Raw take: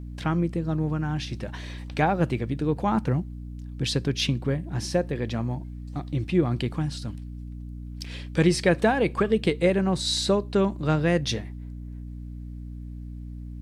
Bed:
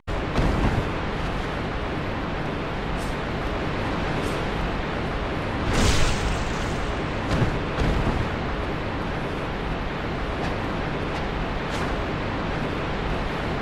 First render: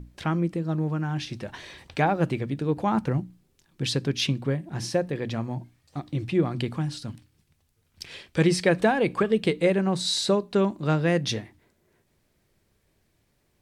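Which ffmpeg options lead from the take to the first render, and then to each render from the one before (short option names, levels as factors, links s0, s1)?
-af "bandreject=f=60:t=h:w=6,bandreject=f=120:t=h:w=6,bandreject=f=180:t=h:w=6,bandreject=f=240:t=h:w=6,bandreject=f=300:t=h:w=6"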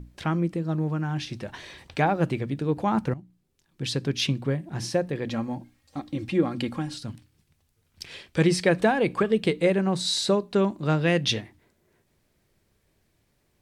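-filter_complex "[0:a]asettb=1/sr,asplit=3[s0][s1][s2];[s0]atrim=end=5.274[s3];[s1]atrim=start=5.27:end=6.94,asetpts=PTS-STARTPTS,afade=t=in:d=0.004:c=qsin,afade=t=out:st=1.666:d=0.004:c=qsin,aecho=1:1:3.7:0.58,atrim=end_sample=73647[s4];[s2]atrim=start=6.936[s5];[s3][s4]acrossfade=d=0.004:c1=hsin:c2=qsin[s6];[s6][s5]acrossfade=d=0.004:c1=qsin:c2=hsin,asettb=1/sr,asplit=3[s7][s8][s9];[s7]atrim=end=11.014[s10];[s8]atrim=start=11.01:end=11.41,asetpts=PTS-STARTPTS,afade=t=in:d=0.004:c=qsin,afade=t=out:st=0.396:d=0.004:c=qsin,equalizer=f=3000:t=o:w=0.86:g=7.5[s11];[s9]atrim=start=11.406[s12];[s10][s11]acrossfade=d=0.004:c1=hsin:c2=qsin[s13];[s13][s12]acrossfade=d=0.004:c1=qsin:c2=hsin,asplit=2[s14][s15];[s14]atrim=end=3.14,asetpts=PTS-STARTPTS,afade=t=out:st=3.136:d=0.004:c=hsin:silence=0.149624[s16];[s15]atrim=start=3.14,asetpts=PTS-STARTPTS,afade=t=in:d=1.02:silence=0.149624[s17];[s16][s17]concat=n=2:v=0:a=1"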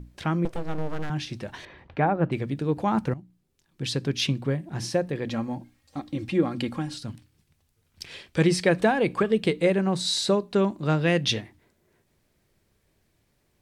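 -filter_complex "[0:a]asettb=1/sr,asplit=3[s0][s1][s2];[s0]atrim=end=0.454[s3];[s1]atrim=start=0.45:end=1.1,asetpts=PTS-STARTPTS,afade=t=in:d=0.004:c=qsin,afade=t=out:st=0.646:d=0.004:c=qsin,aeval=exprs='abs(val(0))':c=same[s4];[s2]atrim=start=1.096[s5];[s3][s4]acrossfade=d=0.004:c1=hsin:c2=qsin[s6];[s6][s5]acrossfade=d=0.004:c1=qsin:c2=hsin,asettb=1/sr,asplit=3[s7][s8][s9];[s7]atrim=end=1.654[s10];[s8]atrim=start=1.65:end=2.32,asetpts=PTS-STARTPTS,afade=t=in:d=0.004:c=qsin,afade=t=out:st=0.666:d=0.004:c=qsin,lowpass=1800[s11];[s9]atrim=start=2.316[s12];[s10][s11]acrossfade=d=0.004:c1=hsin:c2=qsin[s13];[s13][s12]acrossfade=d=0.004:c1=qsin:c2=hsin"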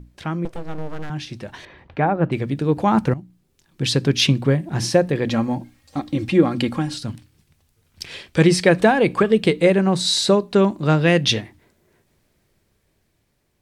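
-af "dynaudnorm=f=980:g=5:m=3.76"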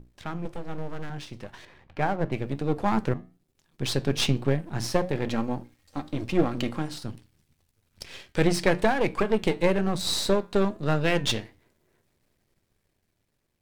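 -af "aeval=exprs='if(lt(val(0),0),0.251*val(0),val(0))':c=same,flanger=delay=7.5:depth=3:regen=-82:speed=1.1:shape=triangular"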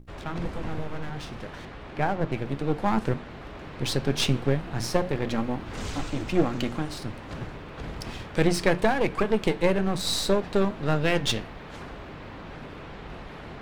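-filter_complex "[1:a]volume=0.2[s0];[0:a][s0]amix=inputs=2:normalize=0"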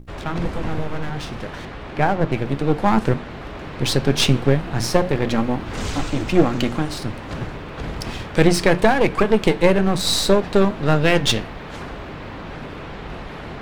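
-af "volume=2.37,alimiter=limit=0.891:level=0:latency=1"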